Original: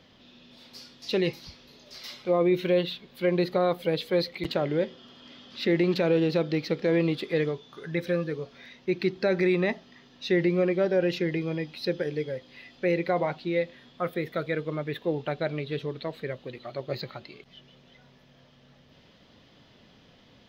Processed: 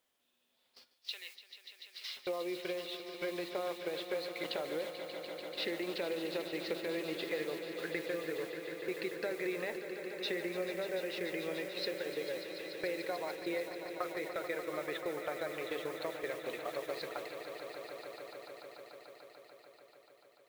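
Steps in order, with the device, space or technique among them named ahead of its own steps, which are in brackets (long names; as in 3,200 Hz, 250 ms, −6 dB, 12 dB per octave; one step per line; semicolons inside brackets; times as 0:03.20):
baby monitor (band-pass filter 450–4,200 Hz; downward compressor 8 to 1, threshold −38 dBFS, peak gain reduction 16 dB; white noise bed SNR 17 dB; noise gate −46 dBFS, range −25 dB)
0:00.94–0:02.17: Bessel high-pass filter 2,400 Hz, order 2
echo that builds up and dies away 146 ms, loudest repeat 5, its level −12 dB
level +2.5 dB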